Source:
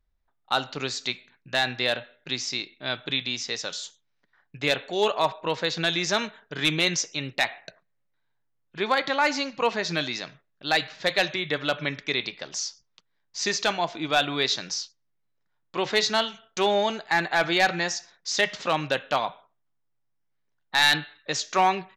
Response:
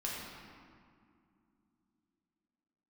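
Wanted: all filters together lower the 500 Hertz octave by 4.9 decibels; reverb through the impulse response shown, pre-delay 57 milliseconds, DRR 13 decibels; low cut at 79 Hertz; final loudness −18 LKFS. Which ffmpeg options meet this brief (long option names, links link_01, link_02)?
-filter_complex "[0:a]highpass=79,equalizer=frequency=500:width_type=o:gain=-6.5,asplit=2[link_01][link_02];[1:a]atrim=start_sample=2205,adelay=57[link_03];[link_02][link_03]afir=irnorm=-1:irlink=0,volume=-16dB[link_04];[link_01][link_04]amix=inputs=2:normalize=0,volume=8.5dB"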